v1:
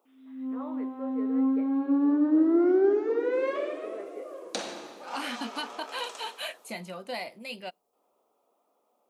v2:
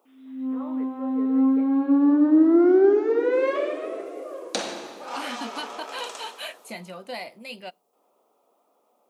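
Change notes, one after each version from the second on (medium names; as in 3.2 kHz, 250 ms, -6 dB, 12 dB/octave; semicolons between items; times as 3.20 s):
second voice: send +7.0 dB; background +5.5 dB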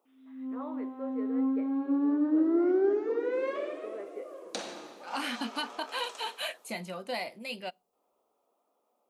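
background -9.0 dB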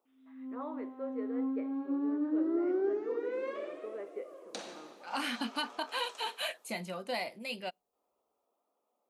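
second voice: send -10.0 dB; background -5.5 dB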